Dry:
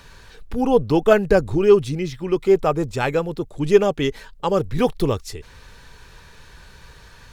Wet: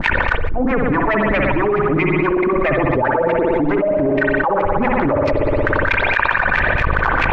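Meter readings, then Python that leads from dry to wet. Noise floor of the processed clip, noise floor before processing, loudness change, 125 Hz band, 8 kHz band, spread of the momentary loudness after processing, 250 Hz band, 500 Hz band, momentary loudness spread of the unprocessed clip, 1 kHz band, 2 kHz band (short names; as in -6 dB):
-19 dBFS, -47 dBFS, +3.0 dB, +4.5 dB, under -10 dB, 2 LU, +4.5 dB, +1.0 dB, 12 LU, +9.0 dB, +15.5 dB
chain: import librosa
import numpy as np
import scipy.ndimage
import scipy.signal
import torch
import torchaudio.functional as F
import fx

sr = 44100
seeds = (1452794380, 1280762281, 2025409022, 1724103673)

y = fx.env_lowpass_down(x, sr, base_hz=730.0, full_db=-15.5)
y = fx.dereverb_blind(y, sr, rt60_s=0.53)
y = y + 0.43 * np.pad(y, (int(3.3 * sr / 1000.0), 0))[:len(y)]
y = fx.leveller(y, sr, passes=5)
y = fx.level_steps(y, sr, step_db=13)
y = fx.dmg_noise_colour(y, sr, seeds[0], colour='pink', level_db=-54.0)
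y = fx.filter_lfo_lowpass(y, sr, shape='sine', hz=4.6, low_hz=520.0, high_hz=2400.0, q=5.9)
y = fx.harmonic_tremolo(y, sr, hz=7.7, depth_pct=100, crossover_hz=470.0)
y = fx.rev_spring(y, sr, rt60_s=1.3, pass_ms=(58,), chirp_ms=40, drr_db=2.0)
y = fx.env_flatten(y, sr, amount_pct=100)
y = y * 10.0 ** (-12.0 / 20.0)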